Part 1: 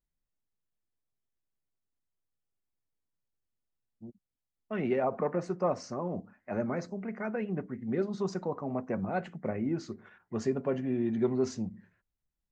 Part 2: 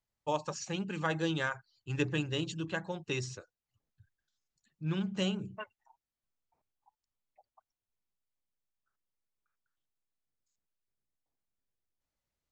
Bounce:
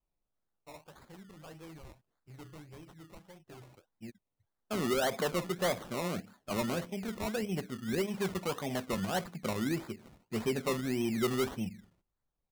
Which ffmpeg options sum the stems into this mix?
-filter_complex "[0:a]adynamicequalizer=threshold=0.00631:dfrequency=270:dqfactor=2.2:tfrequency=270:tqfactor=2.2:attack=5:release=100:ratio=0.375:range=1.5:mode=cutabove:tftype=bell,volume=0.5dB[a];[1:a]asoftclip=type=tanh:threshold=-30.5dB,adelay=400,volume=-13.5dB[b];[a][b]amix=inputs=2:normalize=0,acrusher=samples=22:mix=1:aa=0.000001:lfo=1:lforange=13.2:lforate=1.7,asoftclip=type=tanh:threshold=-22.5dB"

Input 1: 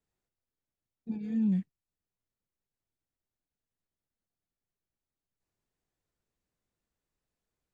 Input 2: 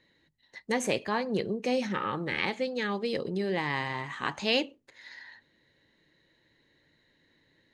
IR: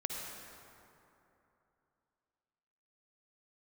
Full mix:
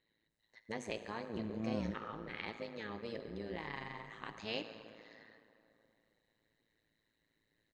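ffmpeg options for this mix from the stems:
-filter_complex "[0:a]asoftclip=type=tanh:threshold=-35.5dB,adelay=300,volume=2dB[a];[1:a]lowpass=6.8k,volume=-13.5dB,asplit=2[b][c];[c]volume=-5dB[d];[2:a]atrim=start_sample=2205[e];[d][e]afir=irnorm=-1:irlink=0[f];[a][b][f]amix=inputs=3:normalize=0,tremolo=f=110:d=0.857"

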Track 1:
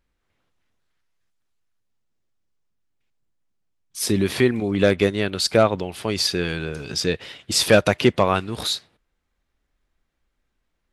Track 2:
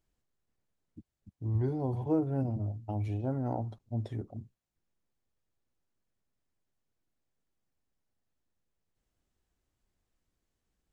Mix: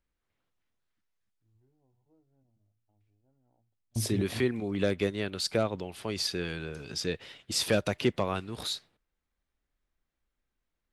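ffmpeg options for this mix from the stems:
-filter_complex "[0:a]acrossover=split=480|3000[a][b][c];[b]acompressor=threshold=-23dB:ratio=2[d];[a][d][c]amix=inputs=3:normalize=0,volume=-9.5dB,asplit=2[e][f];[1:a]volume=2.5dB[g];[f]apad=whole_len=482005[h];[g][h]sidechaingate=range=-42dB:threshold=-53dB:ratio=16:detection=peak[i];[e][i]amix=inputs=2:normalize=0"

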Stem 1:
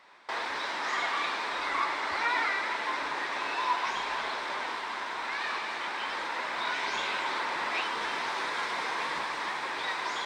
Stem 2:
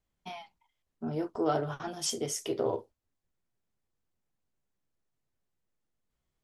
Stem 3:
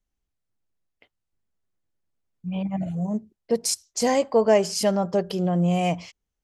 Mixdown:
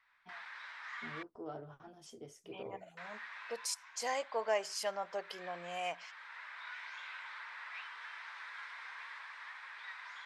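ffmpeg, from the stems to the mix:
-filter_complex "[0:a]highpass=f=1.6k:t=q:w=1.6,volume=-13.5dB,asplit=3[a][b][c];[a]atrim=end=1.23,asetpts=PTS-STARTPTS,afade=t=out:st=1.226:d=0.004:c=hsin[d];[b]atrim=start=1.23:end=2.97,asetpts=PTS-STARTPTS,volume=0[e];[c]atrim=start=2.97,asetpts=PTS-STARTPTS,afade=t=in:d=0.004:c=hsin[f];[d][e][f]concat=n=3:v=0:a=1[g];[1:a]volume=-16dB[h];[2:a]highpass=1.1k,volume=-4dB,asplit=2[i][j];[j]apad=whole_len=452038[k];[g][k]sidechaincompress=threshold=-41dB:ratio=3:attack=21:release=595[l];[l][h][i]amix=inputs=3:normalize=0,highshelf=f=3.1k:g=-11"

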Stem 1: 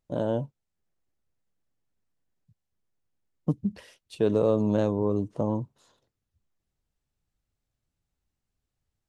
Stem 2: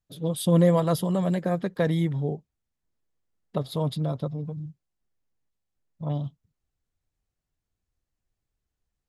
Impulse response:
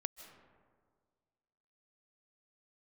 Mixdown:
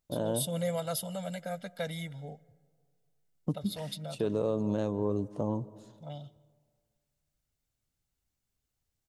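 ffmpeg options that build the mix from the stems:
-filter_complex "[0:a]volume=-5.5dB,asplit=2[a][b];[b]volume=-7.5dB[c];[1:a]highpass=f=680:p=1,equalizer=f=930:t=o:w=1.3:g=-7,aecho=1:1:1.4:0.95,volume=-7dB,asplit=2[d][e];[e]volume=-11.5dB[f];[2:a]atrim=start_sample=2205[g];[c][f]amix=inputs=2:normalize=0[h];[h][g]afir=irnorm=-1:irlink=0[i];[a][d][i]amix=inputs=3:normalize=0,highshelf=f=5.4k:g=6,alimiter=limit=-19.5dB:level=0:latency=1:release=339"

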